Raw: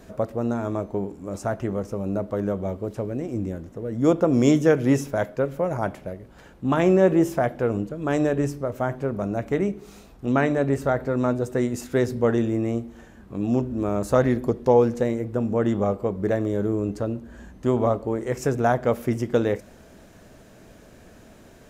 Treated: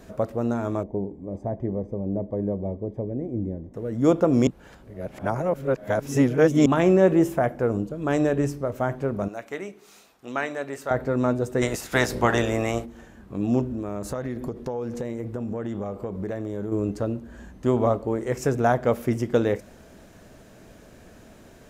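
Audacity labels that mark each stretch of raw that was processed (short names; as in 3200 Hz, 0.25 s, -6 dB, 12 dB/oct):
0.830000	3.740000	running mean over 32 samples
4.470000	6.660000	reverse
7.260000	7.930000	bell 6000 Hz -> 1800 Hz -8.5 dB
9.280000	10.910000	HPF 1200 Hz 6 dB/oct
11.610000	12.840000	spectral limiter ceiling under each frame's peak by 20 dB
13.720000	16.720000	compressor 8:1, threshold -26 dBFS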